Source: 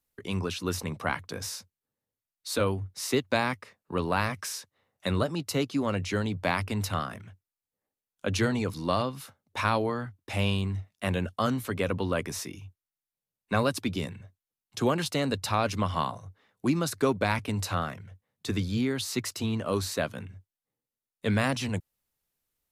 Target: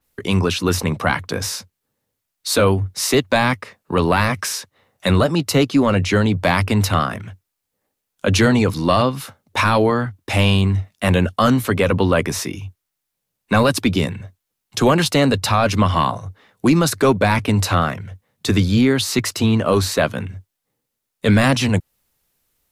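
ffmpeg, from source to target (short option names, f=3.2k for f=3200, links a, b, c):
-af "apsyclip=21dB,adynamicequalizer=threshold=0.0447:dfrequency=4000:dqfactor=0.7:tfrequency=4000:tqfactor=0.7:attack=5:release=100:ratio=0.375:range=2:mode=cutabove:tftype=highshelf,volume=-7.5dB"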